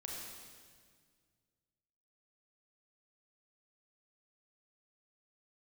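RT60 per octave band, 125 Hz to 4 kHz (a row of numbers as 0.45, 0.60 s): 2.7, 2.3, 1.9, 1.7, 1.7, 1.7 s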